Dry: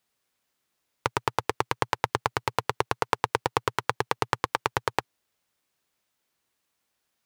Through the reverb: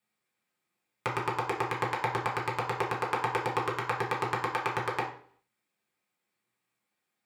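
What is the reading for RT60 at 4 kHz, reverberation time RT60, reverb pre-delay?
0.50 s, 0.50 s, 3 ms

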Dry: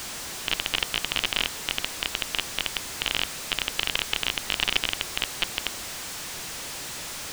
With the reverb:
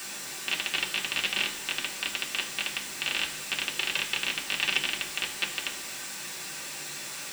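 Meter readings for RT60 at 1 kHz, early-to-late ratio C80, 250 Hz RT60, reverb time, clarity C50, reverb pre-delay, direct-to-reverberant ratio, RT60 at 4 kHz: 0.55 s, 15.5 dB, 0.70 s, 0.55 s, 11.5 dB, 3 ms, -3.0 dB, 0.60 s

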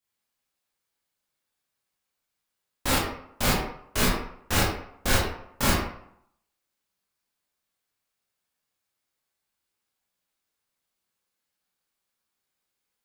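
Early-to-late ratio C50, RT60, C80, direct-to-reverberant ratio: 2.0 dB, 0.70 s, 5.5 dB, -7.0 dB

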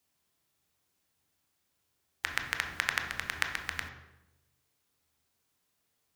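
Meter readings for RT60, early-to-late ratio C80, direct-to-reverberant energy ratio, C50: 0.95 s, 9.0 dB, 3.0 dB, 6.5 dB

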